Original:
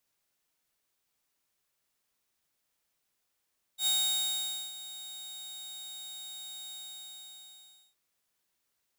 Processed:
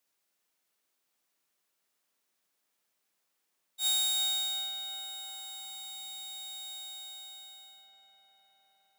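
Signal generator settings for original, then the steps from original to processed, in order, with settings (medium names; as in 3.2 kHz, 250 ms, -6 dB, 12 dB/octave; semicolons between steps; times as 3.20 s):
ADSR saw 3.74 kHz, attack 85 ms, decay 852 ms, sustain -16.5 dB, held 2.94 s, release 1230 ms -22.5 dBFS
high-pass 190 Hz 12 dB/octave; filtered feedback delay 355 ms, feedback 80%, low-pass 3.2 kHz, level -7 dB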